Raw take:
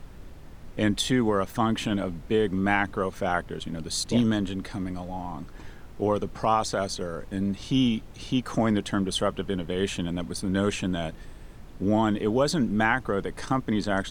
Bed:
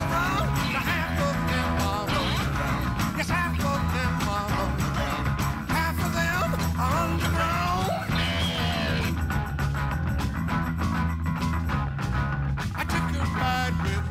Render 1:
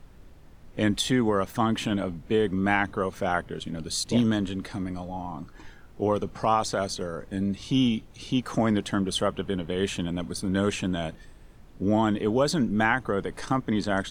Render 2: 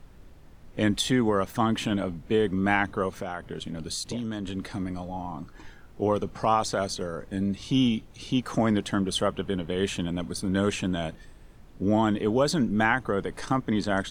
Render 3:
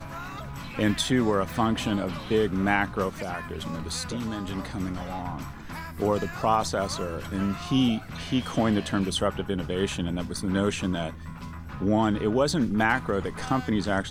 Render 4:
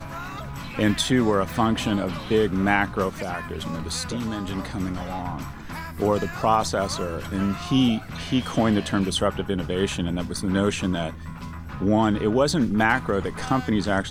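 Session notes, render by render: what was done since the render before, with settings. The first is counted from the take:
noise print and reduce 6 dB
3.15–4.57 compressor, threshold -28 dBFS
add bed -12.5 dB
gain +3 dB

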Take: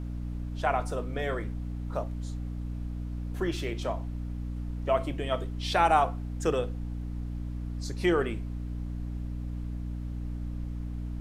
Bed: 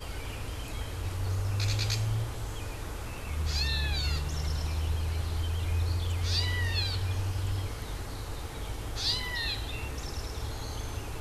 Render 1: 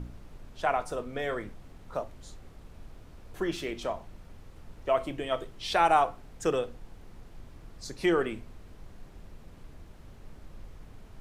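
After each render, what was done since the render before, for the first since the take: de-hum 60 Hz, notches 5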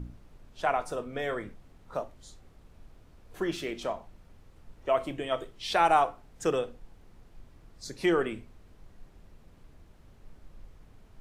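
noise print and reduce 6 dB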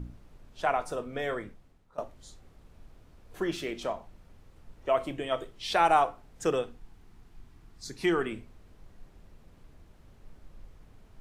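1.33–1.98 fade out, to -20 dB; 6.62–8.31 bell 550 Hz -12.5 dB 0.33 oct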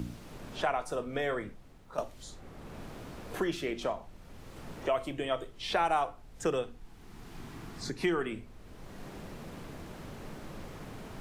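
three-band squash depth 70%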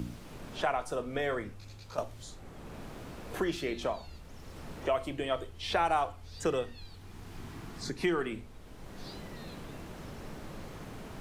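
add bed -21.5 dB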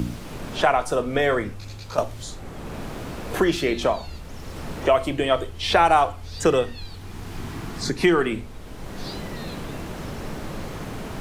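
gain +11.5 dB

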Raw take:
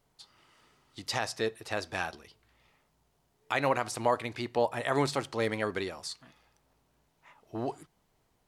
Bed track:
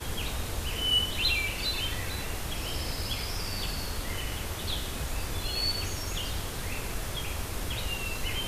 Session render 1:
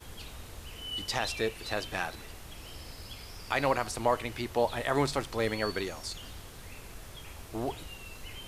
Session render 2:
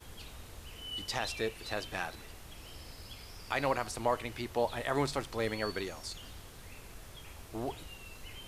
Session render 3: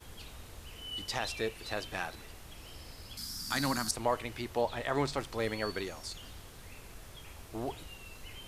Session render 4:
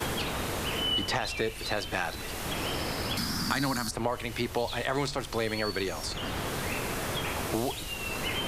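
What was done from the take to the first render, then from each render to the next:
add bed track -12 dB
gain -3.5 dB
3.17–3.91 EQ curve 100 Hz 0 dB, 240 Hz +11 dB, 450 Hz -11 dB, 1600 Hz +3 dB, 2600 Hz -7 dB, 4500 Hz +13 dB; 4.61–5.18 bell 11000 Hz -7 dB 0.63 oct
in parallel at 0 dB: limiter -25.5 dBFS, peak gain reduction 11 dB; on the sum: three-band squash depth 100%

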